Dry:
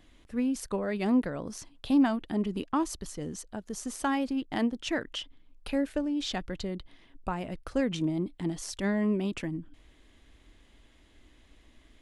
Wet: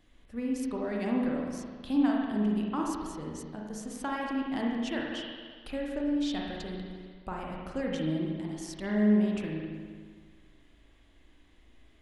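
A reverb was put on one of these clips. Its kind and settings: spring tank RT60 1.7 s, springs 38/52 ms, chirp 35 ms, DRR -2 dB; trim -6 dB

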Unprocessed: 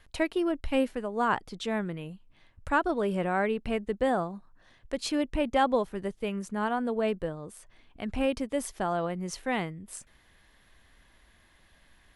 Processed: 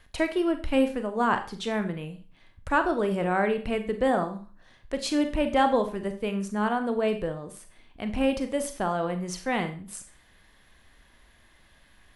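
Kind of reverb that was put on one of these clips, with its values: Schroeder reverb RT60 0.38 s, combs from 30 ms, DRR 7.5 dB; trim +2 dB

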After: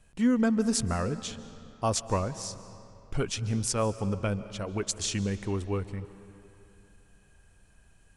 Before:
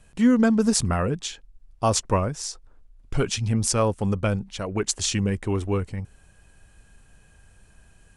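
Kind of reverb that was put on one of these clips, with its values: algorithmic reverb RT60 2.9 s, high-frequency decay 0.7×, pre-delay 105 ms, DRR 14 dB; trim -6 dB

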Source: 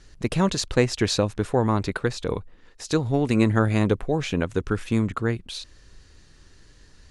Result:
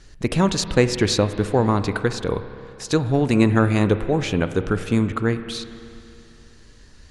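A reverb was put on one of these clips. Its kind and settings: spring tank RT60 2.7 s, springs 30/49 ms, chirp 60 ms, DRR 10.5 dB; trim +3 dB

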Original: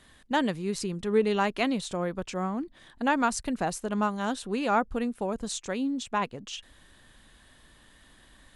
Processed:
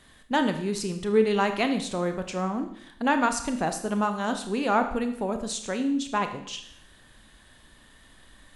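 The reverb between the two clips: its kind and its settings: Schroeder reverb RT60 0.69 s, combs from 25 ms, DRR 7 dB; trim +1.5 dB

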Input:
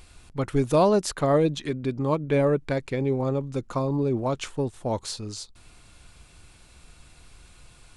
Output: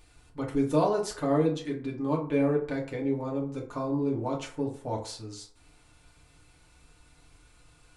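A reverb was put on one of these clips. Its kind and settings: FDN reverb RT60 0.5 s, low-frequency decay 0.75×, high-frequency decay 0.5×, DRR -2.5 dB; trim -10 dB

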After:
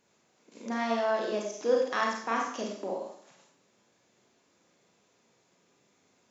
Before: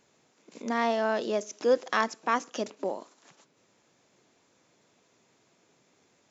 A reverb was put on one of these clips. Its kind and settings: Schroeder reverb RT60 0.62 s, combs from 31 ms, DRR -1.5 dB; trim -5.5 dB

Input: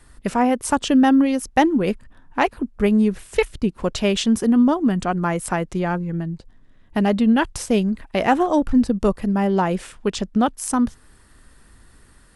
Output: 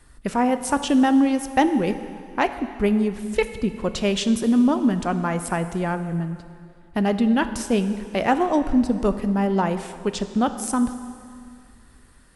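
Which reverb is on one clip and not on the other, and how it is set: plate-style reverb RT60 2.3 s, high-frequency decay 0.9×, DRR 9.5 dB; trim -2.5 dB

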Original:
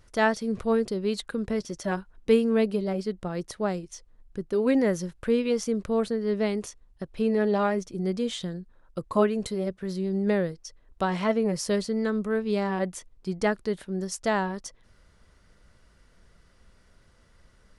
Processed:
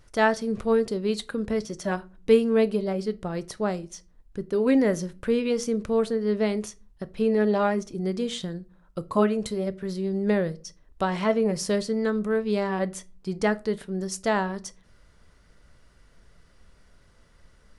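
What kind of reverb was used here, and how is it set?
simulated room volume 200 m³, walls furnished, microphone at 0.32 m; trim +1 dB

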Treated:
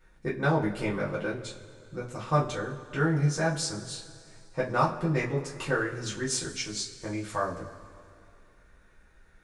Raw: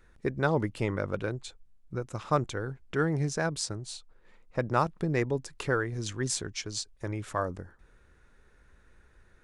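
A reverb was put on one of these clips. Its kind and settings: two-slope reverb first 0.23 s, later 2.4 s, from -21 dB, DRR -7.5 dB; trim -6 dB

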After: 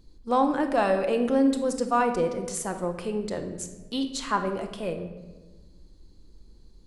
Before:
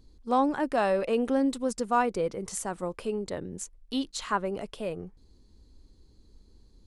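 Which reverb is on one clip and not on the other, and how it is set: simulated room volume 840 m³, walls mixed, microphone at 0.78 m; trim +1.5 dB

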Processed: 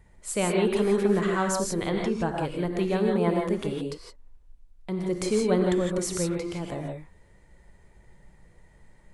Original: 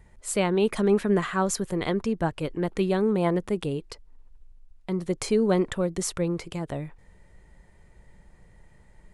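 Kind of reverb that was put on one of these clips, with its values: gated-style reverb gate 190 ms rising, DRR 1 dB; trim -2.5 dB

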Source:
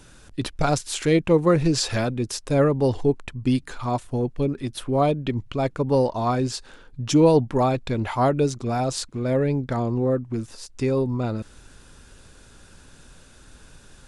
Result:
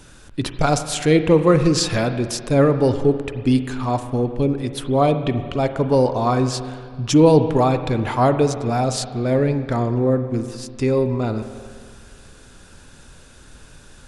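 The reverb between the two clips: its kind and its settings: spring tank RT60 2 s, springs 39/50 ms, chirp 60 ms, DRR 9 dB; trim +3.5 dB

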